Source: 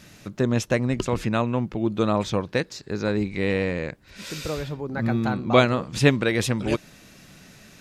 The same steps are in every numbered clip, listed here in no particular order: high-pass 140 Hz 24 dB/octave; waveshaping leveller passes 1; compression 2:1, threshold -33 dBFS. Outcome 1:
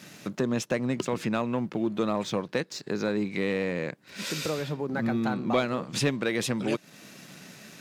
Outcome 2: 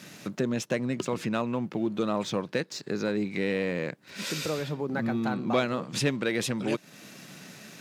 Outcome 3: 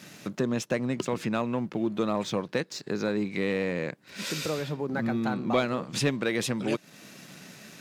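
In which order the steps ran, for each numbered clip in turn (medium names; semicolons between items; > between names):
high-pass > compression > waveshaping leveller; compression > waveshaping leveller > high-pass; compression > high-pass > waveshaping leveller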